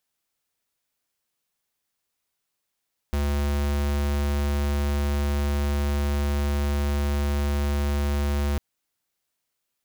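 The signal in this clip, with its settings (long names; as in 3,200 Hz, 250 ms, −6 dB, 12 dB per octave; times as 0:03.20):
tone square 72 Hz −24 dBFS 5.45 s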